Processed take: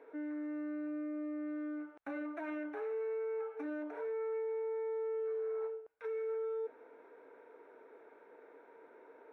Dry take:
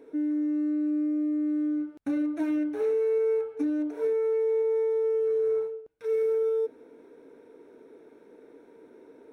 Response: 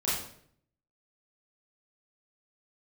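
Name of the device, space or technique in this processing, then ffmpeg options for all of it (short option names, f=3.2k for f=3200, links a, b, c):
DJ mixer with the lows and highs turned down: -filter_complex "[0:a]acrossover=split=580 2400:gain=0.0794 1 0.0631[a][b][c];[a][b][c]amix=inputs=3:normalize=0,alimiter=level_in=13.5dB:limit=-24dB:level=0:latency=1:release=16,volume=-13.5dB,volume=4dB"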